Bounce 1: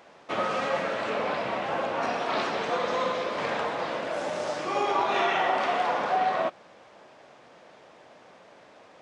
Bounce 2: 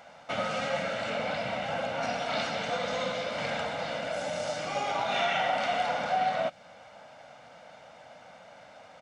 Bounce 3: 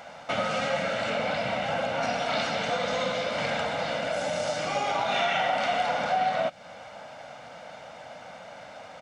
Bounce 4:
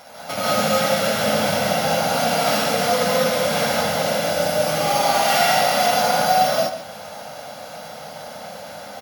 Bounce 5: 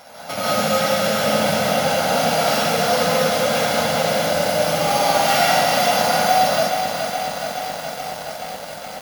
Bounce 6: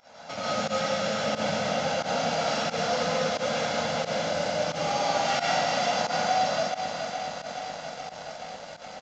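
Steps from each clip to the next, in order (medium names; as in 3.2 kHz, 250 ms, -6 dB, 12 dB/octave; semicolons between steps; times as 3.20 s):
peaking EQ 380 Hz -13.5 dB 0.3 oct; comb 1.4 ms, depth 51%; dynamic bell 1 kHz, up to -8 dB, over -38 dBFS, Q 0.85; trim +1 dB
compression 1.5:1, threshold -38 dBFS, peak gain reduction 5.5 dB; trim +7 dB
sorted samples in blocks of 8 samples; echo from a far wall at 24 m, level -10 dB; gated-style reverb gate 220 ms rising, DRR -7.5 dB
bit-crushed delay 422 ms, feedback 80%, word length 6-bit, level -7.5 dB
volume shaper 89 bpm, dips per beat 1, -17 dB, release 86 ms; resampled via 16 kHz; trim -8.5 dB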